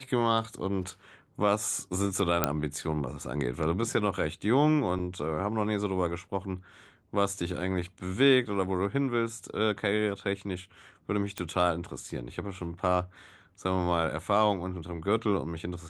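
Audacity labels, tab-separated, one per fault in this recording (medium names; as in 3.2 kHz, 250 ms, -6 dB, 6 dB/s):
2.440000	2.440000	pop -7 dBFS
4.990000	4.990000	dropout 4.6 ms
11.380000	11.380000	pop -18 dBFS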